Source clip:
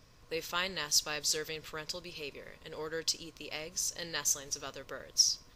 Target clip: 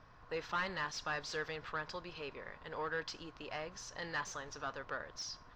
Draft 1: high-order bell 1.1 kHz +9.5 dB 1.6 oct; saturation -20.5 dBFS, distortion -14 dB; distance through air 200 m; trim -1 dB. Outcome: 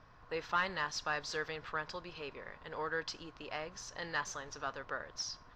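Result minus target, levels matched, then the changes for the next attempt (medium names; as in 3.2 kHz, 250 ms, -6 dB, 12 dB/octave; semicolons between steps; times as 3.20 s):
saturation: distortion -6 dB
change: saturation -28 dBFS, distortion -8 dB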